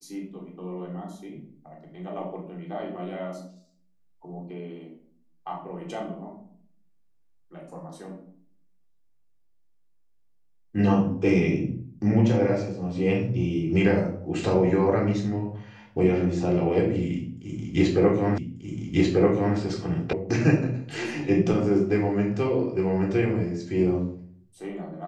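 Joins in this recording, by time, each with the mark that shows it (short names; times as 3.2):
18.38 repeat of the last 1.19 s
20.13 sound cut off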